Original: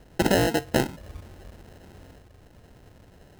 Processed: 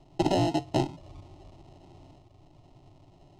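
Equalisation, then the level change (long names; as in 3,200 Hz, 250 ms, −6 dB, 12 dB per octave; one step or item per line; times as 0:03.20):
high-frequency loss of the air 110 metres
phaser with its sweep stopped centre 320 Hz, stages 8
0.0 dB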